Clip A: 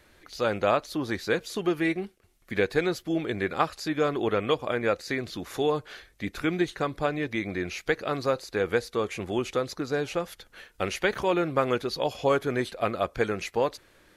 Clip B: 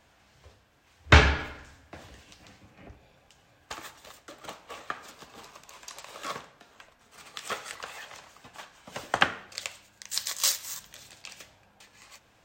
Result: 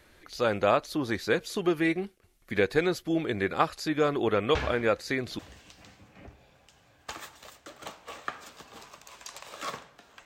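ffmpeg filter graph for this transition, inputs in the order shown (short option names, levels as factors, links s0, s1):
-filter_complex "[1:a]asplit=2[s0][s1];[0:a]apad=whole_dur=10.25,atrim=end=10.25,atrim=end=5.392[s2];[s1]atrim=start=2.008:end=6.87[s3];[s0]atrim=start=1.17:end=2.01,asetpts=PTS-STARTPTS,volume=0.266,afade=t=in:d=0.004:c=hsin,afade=t=out:st=0.836:d=0.004:c=hsin,adelay=4550[s4];[s2][s3]acrossfade=d=0.004:c1=hsin:c2=hsin[s5];[s5][s4]amix=inputs=2:normalize=0"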